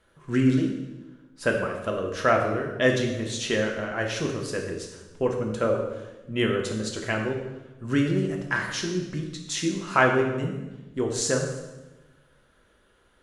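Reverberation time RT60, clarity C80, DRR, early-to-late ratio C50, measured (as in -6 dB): 1.1 s, 7.5 dB, 0.5 dB, 5.0 dB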